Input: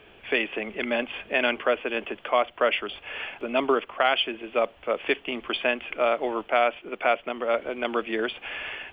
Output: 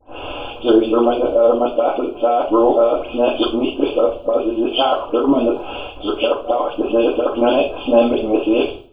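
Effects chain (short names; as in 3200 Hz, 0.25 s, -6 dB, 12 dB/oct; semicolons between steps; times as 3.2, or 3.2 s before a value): whole clip reversed; in parallel at -2 dB: limiter -18 dBFS, peak gain reduction 10.5 dB; on the sum: Butterworth band-stop 1900 Hz, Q 0.85; bell 210 Hz -9 dB 0.45 oct; negative-ratio compressor -22 dBFS, ratio -0.5; gate -41 dBFS, range -17 dB; high shelf 2500 Hz -7.5 dB; dispersion highs, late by 0.102 s, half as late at 2800 Hz; reverb RT60 0.40 s, pre-delay 3 ms, DRR -1 dB; gain +6.5 dB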